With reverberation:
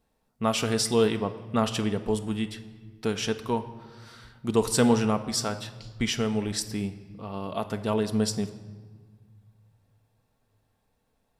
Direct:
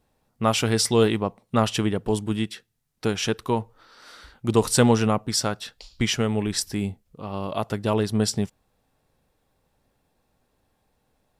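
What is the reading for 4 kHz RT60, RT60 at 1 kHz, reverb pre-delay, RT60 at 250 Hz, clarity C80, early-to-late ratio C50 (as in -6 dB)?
1.1 s, 1.5 s, 4 ms, 2.3 s, 14.5 dB, 13.0 dB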